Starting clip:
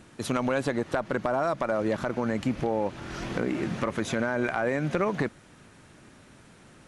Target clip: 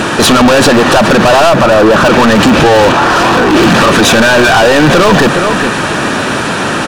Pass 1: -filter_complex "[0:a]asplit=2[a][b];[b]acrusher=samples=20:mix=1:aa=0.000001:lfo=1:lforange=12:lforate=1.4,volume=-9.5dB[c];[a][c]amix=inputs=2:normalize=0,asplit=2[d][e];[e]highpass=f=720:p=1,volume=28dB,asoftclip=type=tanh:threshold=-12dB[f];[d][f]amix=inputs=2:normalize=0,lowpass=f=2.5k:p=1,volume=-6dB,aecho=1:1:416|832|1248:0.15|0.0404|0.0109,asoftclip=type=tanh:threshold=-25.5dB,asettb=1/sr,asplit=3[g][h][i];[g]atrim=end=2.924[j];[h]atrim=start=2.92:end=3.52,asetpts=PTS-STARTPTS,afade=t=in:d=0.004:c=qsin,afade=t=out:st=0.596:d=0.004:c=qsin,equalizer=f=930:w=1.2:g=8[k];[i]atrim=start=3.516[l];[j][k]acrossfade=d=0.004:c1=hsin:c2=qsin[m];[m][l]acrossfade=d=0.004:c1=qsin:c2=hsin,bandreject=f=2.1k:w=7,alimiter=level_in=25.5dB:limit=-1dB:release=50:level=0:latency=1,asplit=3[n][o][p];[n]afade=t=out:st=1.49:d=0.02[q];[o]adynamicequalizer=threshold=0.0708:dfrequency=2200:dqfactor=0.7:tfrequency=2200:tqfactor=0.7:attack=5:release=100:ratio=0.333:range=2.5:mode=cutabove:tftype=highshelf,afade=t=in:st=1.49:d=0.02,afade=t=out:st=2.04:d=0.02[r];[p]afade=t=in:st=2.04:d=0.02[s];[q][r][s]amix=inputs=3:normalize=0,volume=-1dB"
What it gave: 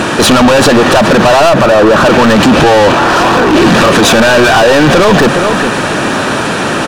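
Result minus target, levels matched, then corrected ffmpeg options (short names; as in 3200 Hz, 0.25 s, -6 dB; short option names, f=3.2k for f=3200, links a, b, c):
decimation with a swept rate: distortion -12 dB
-filter_complex "[0:a]asplit=2[a][b];[b]acrusher=samples=50:mix=1:aa=0.000001:lfo=1:lforange=30:lforate=1.4,volume=-9.5dB[c];[a][c]amix=inputs=2:normalize=0,asplit=2[d][e];[e]highpass=f=720:p=1,volume=28dB,asoftclip=type=tanh:threshold=-12dB[f];[d][f]amix=inputs=2:normalize=0,lowpass=f=2.5k:p=1,volume=-6dB,aecho=1:1:416|832|1248:0.15|0.0404|0.0109,asoftclip=type=tanh:threshold=-25.5dB,asettb=1/sr,asplit=3[g][h][i];[g]atrim=end=2.924[j];[h]atrim=start=2.92:end=3.52,asetpts=PTS-STARTPTS,afade=t=in:d=0.004:c=qsin,afade=t=out:st=0.596:d=0.004:c=qsin,equalizer=f=930:w=1.2:g=8[k];[i]atrim=start=3.516[l];[j][k]acrossfade=d=0.004:c1=hsin:c2=qsin[m];[m][l]acrossfade=d=0.004:c1=qsin:c2=hsin,bandreject=f=2.1k:w=7,alimiter=level_in=25.5dB:limit=-1dB:release=50:level=0:latency=1,asplit=3[n][o][p];[n]afade=t=out:st=1.49:d=0.02[q];[o]adynamicequalizer=threshold=0.0708:dfrequency=2200:dqfactor=0.7:tfrequency=2200:tqfactor=0.7:attack=5:release=100:ratio=0.333:range=2.5:mode=cutabove:tftype=highshelf,afade=t=in:st=1.49:d=0.02,afade=t=out:st=2.04:d=0.02[r];[p]afade=t=in:st=2.04:d=0.02[s];[q][r][s]amix=inputs=3:normalize=0,volume=-1dB"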